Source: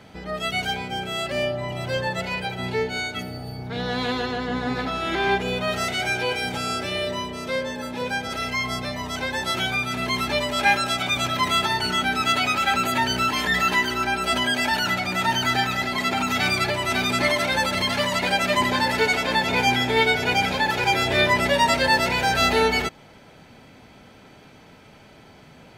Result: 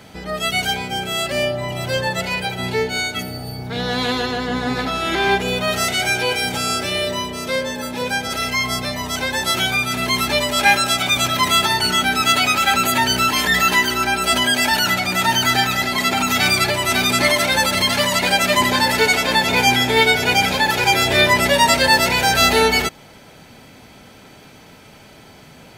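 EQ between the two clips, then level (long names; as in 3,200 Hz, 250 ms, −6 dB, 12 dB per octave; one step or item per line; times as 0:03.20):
high-shelf EQ 5,900 Hz +11 dB
+4.0 dB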